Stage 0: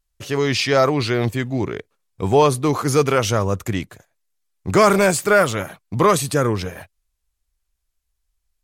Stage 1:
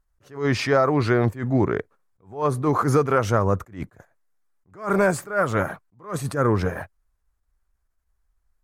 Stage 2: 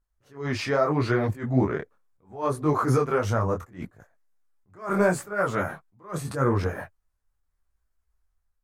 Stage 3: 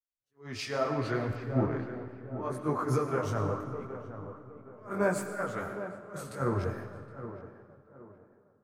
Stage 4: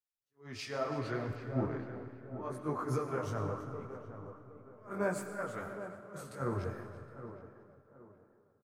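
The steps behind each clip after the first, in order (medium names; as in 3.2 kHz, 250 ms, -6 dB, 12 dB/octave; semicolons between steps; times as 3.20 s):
resonant high shelf 2.1 kHz -10.5 dB, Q 1.5; compression 12:1, threshold -19 dBFS, peak gain reduction 12 dB; attacks held to a fixed rise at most 170 dB/s; trim +4.5 dB
level rider gain up to 4 dB; detune thickener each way 26 cents; trim -3.5 dB
tape echo 770 ms, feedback 64%, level -5 dB, low-pass 1.3 kHz; algorithmic reverb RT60 2.6 s, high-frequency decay 0.85×, pre-delay 65 ms, DRR 5.5 dB; three bands expanded up and down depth 70%; trim -9 dB
feedback delay 331 ms, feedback 30%, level -16.5 dB; trim -5.5 dB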